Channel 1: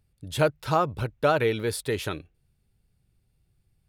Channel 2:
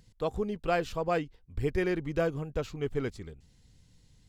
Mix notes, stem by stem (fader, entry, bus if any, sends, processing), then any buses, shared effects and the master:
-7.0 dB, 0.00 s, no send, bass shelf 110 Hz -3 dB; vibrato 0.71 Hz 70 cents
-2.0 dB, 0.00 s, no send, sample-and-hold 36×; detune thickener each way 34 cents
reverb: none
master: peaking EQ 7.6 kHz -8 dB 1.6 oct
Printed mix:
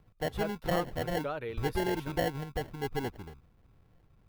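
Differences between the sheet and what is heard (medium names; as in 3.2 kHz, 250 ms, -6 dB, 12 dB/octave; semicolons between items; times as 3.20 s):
stem 1 -7.0 dB -> -14.0 dB; stem 2: missing detune thickener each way 34 cents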